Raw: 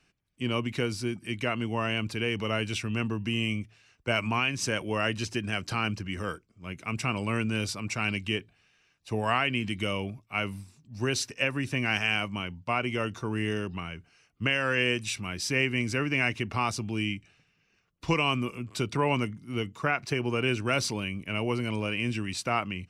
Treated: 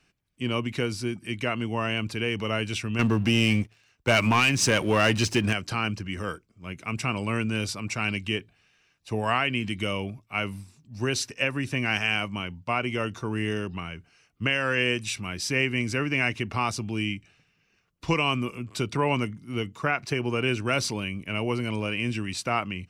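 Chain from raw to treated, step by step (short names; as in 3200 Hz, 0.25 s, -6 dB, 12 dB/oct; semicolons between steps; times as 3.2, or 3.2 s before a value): 2.99–5.53 sample leveller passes 2; gain +1.5 dB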